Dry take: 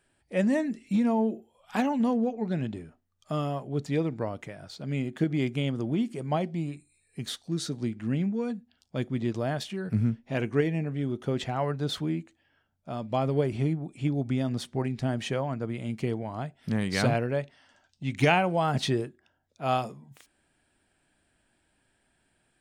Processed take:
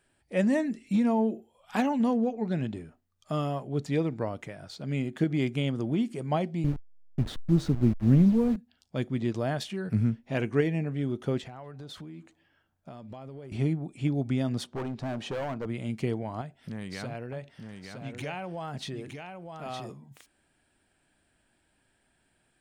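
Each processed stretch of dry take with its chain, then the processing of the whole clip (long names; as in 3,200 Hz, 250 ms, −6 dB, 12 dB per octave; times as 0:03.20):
0:06.64–0:08.56: hold until the input has moved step −37.5 dBFS + downward expander −44 dBFS + spectral tilt −3.5 dB per octave
0:11.38–0:13.52: downward compressor 16 to 1, threshold −39 dBFS + feedback echo with a band-pass in the loop 246 ms, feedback 48%, band-pass 880 Hz, level −23 dB
0:14.64–0:15.66: parametric band 2,000 Hz −11 dB 0.7 octaves + mid-hump overdrive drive 13 dB, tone 1,200 Hz, clips at −16.5 dBFS + hard clipping −30 dBFS
0:16.41–0:19.90: downward compressor 3 to 1, threshold −37 dBFS + single-tap delay 913 ms −6 dB
whole clip: no processing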